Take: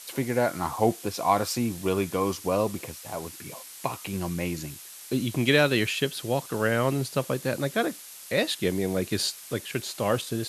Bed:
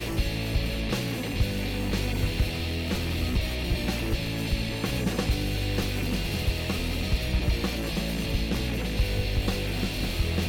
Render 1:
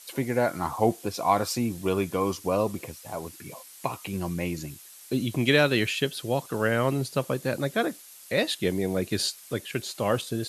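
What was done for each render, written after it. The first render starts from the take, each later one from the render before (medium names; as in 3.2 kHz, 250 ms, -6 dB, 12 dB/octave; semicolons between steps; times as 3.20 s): noise reduction 6 dB, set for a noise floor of -45 dBFS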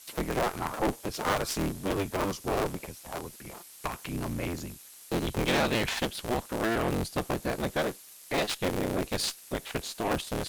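cycle switcher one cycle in 3, inverted; valve stage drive 21 dB, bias 0.5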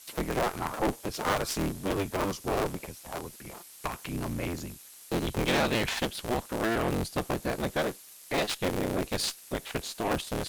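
no audible change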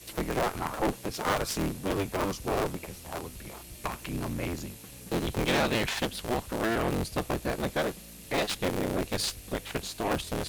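add bed -21 dB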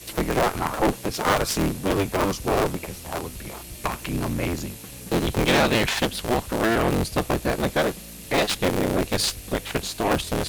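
trim +7 dB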